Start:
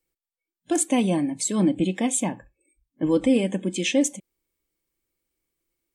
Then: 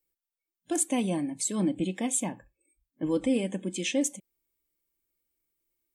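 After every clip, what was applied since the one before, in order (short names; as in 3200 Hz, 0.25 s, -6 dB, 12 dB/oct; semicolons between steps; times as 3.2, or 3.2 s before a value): high shelf 11000 Hz +11 dB; gain -6.5 dB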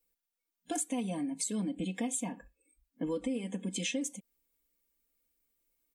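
comb 4.2 ms, depth 83%; compressor 6:1, threshold -32 dBFS, peak gain reduction 14.5 dB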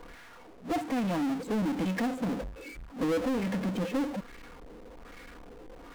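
LFO low-pass sine 1.2 Hz 450–1900 Hz; power-law curve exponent 0.35; gain -3 dB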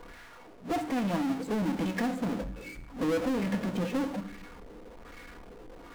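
reverb RT60 0.75 s, pre-delay 4 ms, DRR 9.5 dB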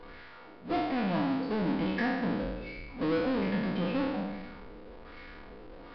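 spectral trails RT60 1.24 s; downsampling 11025 Hz; gain -2.5 dB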